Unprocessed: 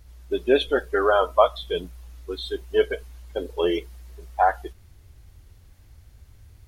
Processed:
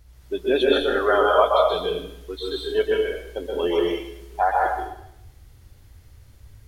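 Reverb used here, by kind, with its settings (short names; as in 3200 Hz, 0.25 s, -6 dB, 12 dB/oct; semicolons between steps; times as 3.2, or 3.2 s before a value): plate-style reverb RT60 0.77 s, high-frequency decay 1×, pre-delay 0.115 s, DRR -3 dB; gain -2 dB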